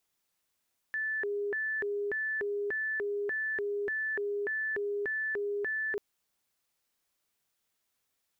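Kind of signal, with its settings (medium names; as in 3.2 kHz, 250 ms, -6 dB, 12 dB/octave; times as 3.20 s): siren hi-lo 408–1750 Hz 1.7 per s sine -30 dBFS 5.04 s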